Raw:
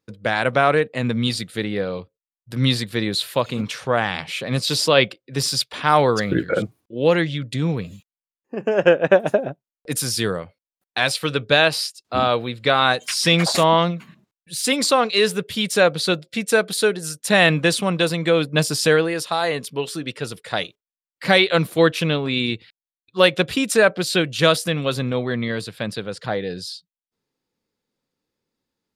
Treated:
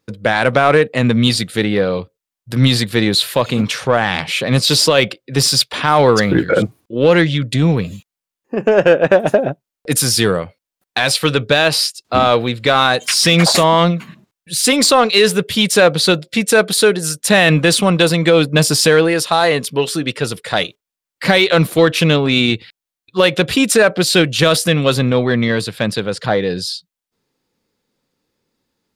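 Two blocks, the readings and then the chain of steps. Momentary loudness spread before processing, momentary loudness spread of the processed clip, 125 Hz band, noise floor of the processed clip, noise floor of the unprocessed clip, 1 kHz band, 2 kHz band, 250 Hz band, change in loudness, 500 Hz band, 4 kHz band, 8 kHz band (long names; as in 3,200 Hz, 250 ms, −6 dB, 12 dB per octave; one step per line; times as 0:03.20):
12 LU, 9 LU, +7.5 dB, below −85 dBFS, below −85 dBFS, +5.0 dB, +5.0 dB, +7.5 dB, +6.0 dB, +5.5 dB, +6.5 dB, +8.5 dB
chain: in parallel at −5 dB: soft clipping −19 dBFS, distortion −7 dB
on the sum: boost into a limiter +6.5 dB
level −1 dB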